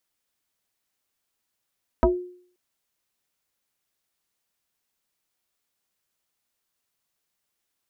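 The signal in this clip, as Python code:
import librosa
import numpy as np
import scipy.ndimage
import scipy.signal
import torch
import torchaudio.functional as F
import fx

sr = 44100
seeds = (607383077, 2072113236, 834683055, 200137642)

y = fx.fm2(sr, length_s=0.53, level_db=-12, carrier_hz=359.0, ratio=0.84, index=2.6, index_s=0.2, decay_s=0.54, shape='exponential')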